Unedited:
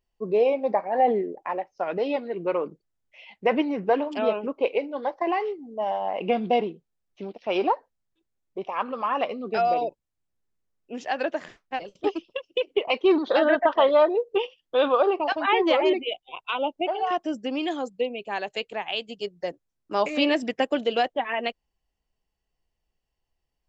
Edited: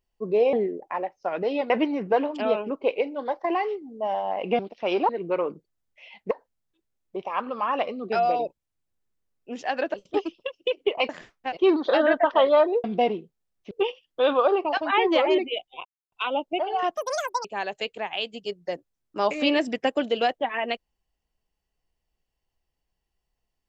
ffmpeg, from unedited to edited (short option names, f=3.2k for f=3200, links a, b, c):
-filter_complex "[0:a]asplit=14[a][b][c][d][e][f][g][h][i][j][k][l][m][n];[a]atrim=end=0.532[o];[b]atrim=start=1.078:end=2.252[p];[c]atrim=start=3.468:end=6.362[q];[d]atrim=start=7.228:end=7.732[r];[e]atrim=start=2.248:end=3.472[s];[f]atrim=start=7.728:end=11.362[t];[g]atrim=start=11.838:end=12.992[u];[h]atrim=start=11.358:end=11.842[v];[i]atrim=start=12.988:end=14.262[w];[j]atrim=start=6.358:end=7.232[x];[k]atrim=start=14.258:end=16.4,asetpts=PTS-STARTPTS,afade=t=out:st=2.138:d=0.004:c=hsin,apad=pad_dur=0.27[y];[l]atrim=start=16.4:end=17.254,asetpts=PTS-STARTPTS,afade=t=in:d=0.004:c=hsin[z];[m]atrim=start=17.25:end=18.2,asetpts=PTS-STARTPTS,asetrate=87759,aresample=44100[aa];[n]atrim=start=18.196[ab];[o][p]acrossfade=d=0.004:c1=hsin:c2=hsin[ac];[ac][q]acrossfade=d=0.004:c1=hsin:c2=hsin[ad];[ad][r]acrossfade=d=0.004:c1=hsin:c2=hsin[ae];[ae][s]acrossfade=d=0.004:c1=hsin:c2=hsin[af];[af][t]acrossfade=d=0.004:c1=hsin:c2=hsin[ag];[ag][u]acrossfade=d=0.004:c1=hsin:c2=hsin[ah];[ah][v]acrossfade=d=0.004:c1=hsin:c2=hsin[ai];[ai][w]acrossfade=d=0.004:c1=hsin:c2=hsin[aj];[aj][x]acrossfade=d=0.004:c1=hsin:c2=hsin[ak];[y][z]concat=n=2:v=0:a=1[al];[ak][al]acrossfade=d=0.004:c1=hsin:c2=hsin[am];[am][aa]acrossfade=d=0.004:c1=hsin:c2=hsin[an];[an][ab]acrossfade=d=0.004:c1=hsin:c2=hsin"